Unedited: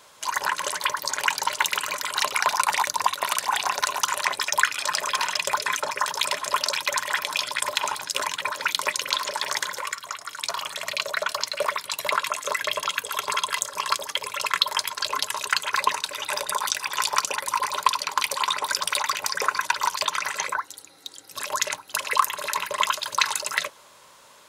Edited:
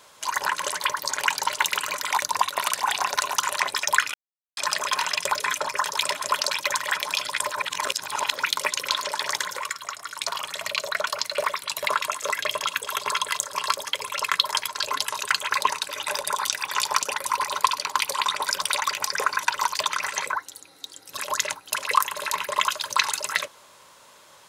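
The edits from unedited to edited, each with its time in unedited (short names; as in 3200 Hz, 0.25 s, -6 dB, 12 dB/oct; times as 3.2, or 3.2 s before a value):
2.12–2.77 cut
4.79 insert silence 0.43 s
7.72–8.57 reverse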